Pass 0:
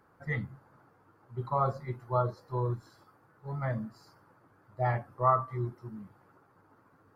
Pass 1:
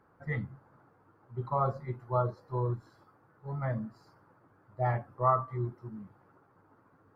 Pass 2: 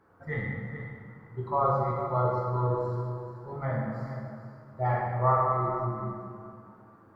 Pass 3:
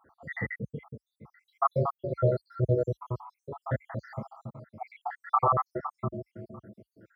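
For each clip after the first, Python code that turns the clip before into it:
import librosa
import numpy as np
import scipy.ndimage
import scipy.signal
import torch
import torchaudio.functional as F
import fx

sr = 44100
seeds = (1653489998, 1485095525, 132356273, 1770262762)

y1 = fx.high_shelf(x, sr, hz=3000.0, db=-10.0)
y2 = y1 + 10.0 ** (-11.5 / 20.0) * np.pad(y1, (int(431 * sr / 1000.0), 0))[:len(y1)]
y2 = fx.rev_plate(y2, sr, seeds[0], rt60_s=2.2, hf_ratio=0.65, predelay_ms=0, drr_db=-3.5)
y3 = fx.spec_dropout(y2, sr, seeds[1], share_pct=79)
y3 = scipy.signal.sosfilt(scipy.signal.butter(4, 53.0, 'highpass', fs=sr, output='sos'), y3)
y3 = F.gain(torch.from_numpy(y3), 4.5).numpy()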